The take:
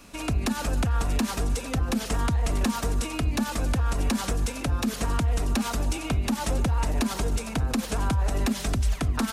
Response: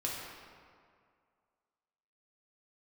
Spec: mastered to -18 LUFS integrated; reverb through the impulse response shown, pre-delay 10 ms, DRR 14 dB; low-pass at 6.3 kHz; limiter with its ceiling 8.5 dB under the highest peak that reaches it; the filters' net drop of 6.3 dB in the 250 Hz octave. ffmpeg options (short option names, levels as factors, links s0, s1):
-filter_complex "[0:a]lowpass=6300,equalizer=f=250:t=o:g=-7.5,alimiter=limit=0.0631:level=0:latency=1,asplit=2[s0][s1];[1:a]atrim=start_sample=2205,adelay=10[s2];[s1][s2]afir=irnorm=-1:irlink=0,volume=0.133[s3];[s0][s3]amix=inputs=2:normalize=0,volume=5.62"